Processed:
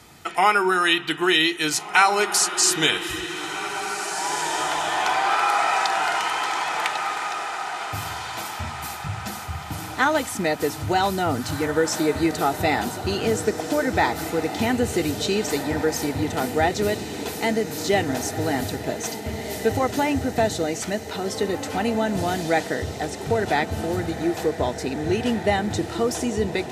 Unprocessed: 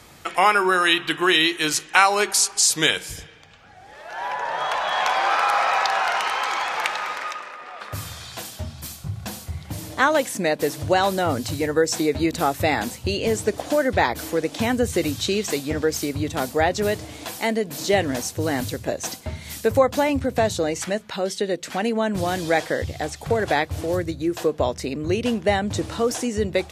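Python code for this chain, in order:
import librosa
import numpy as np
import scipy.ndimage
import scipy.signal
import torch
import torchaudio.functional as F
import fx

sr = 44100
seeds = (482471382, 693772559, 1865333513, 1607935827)

y = fx.notch_comb(x, sr, f0_hz=550.0)
y = fx.echo_diffused(y, sr, ms=1825, feedback_pct=48, wet_db=-9.0)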